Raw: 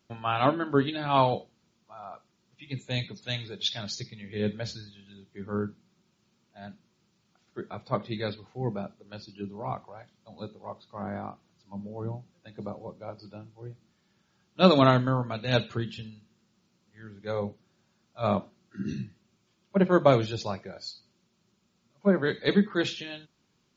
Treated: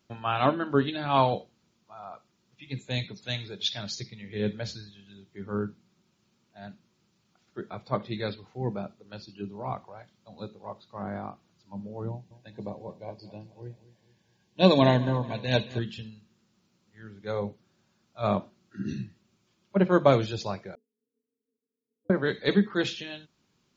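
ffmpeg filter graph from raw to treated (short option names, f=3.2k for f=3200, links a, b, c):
-filter_complex "[0:a]asettb=1/sr,asplit=3[a][b][c];[a]atrim=end=12.094[d];[b]atrim=start=12.09:end=15.79,asetpts=PTS-STARTPTS,afade=t=in:d=0.004:c=qsin,afade=t=out:st=3.696:d=0.004:c=qsin,asuperstop=centerf=1300:order=8:qfactor=3.7,aecho=1:1:217|434|651|868:0.133|0.06|0.027|0.0122,atrim=end_sample=163170[e];[c]atrim=start=15.786[f];[d][e]acrossfade=d=0.004:c1=hsin:c2=qsin[g];[g][f]acrossfade=d=0.004:c1=qsin:c2=hsin,asettb=1/sr,asplit=3[h][i][j];[h]atrim=end=20.754[k];[i]atrim=start=20.75:end=22.1,asetpts=PTS-STARTPTS,afade=t=in:d=0.004:c=qsin,afade=t=out:st=1.346:d=0.004:c=qsin,acompressor=threshold=-38dB:ratio=10:attack=3.2:release=140:knee=1:detection=peak,asuperpass=centerf=340:order=4:qfactor=6.9,aeval=exprs='val(0)*sin(2*PI*98*n/s)':c=same[l];[j]atrim=start=22.096[m];[k][l]acrossfade=d=0.004:c1=hsin:c2=qsin[n];[n][m]acrossfade=d=0.004:c1=qsin:c2=hsin"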